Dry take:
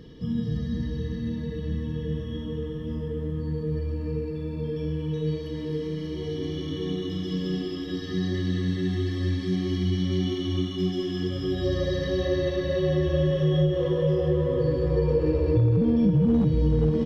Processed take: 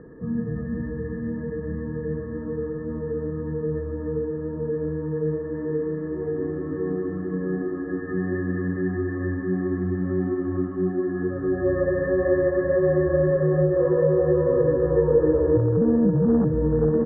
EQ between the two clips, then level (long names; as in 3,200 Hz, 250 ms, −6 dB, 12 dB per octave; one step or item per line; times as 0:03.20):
Chebyshev low-pass with heavy ripple 1,800 Hz, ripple 3 dB
low-shelf EQ 200 Hz −10 dB
+7.5 dB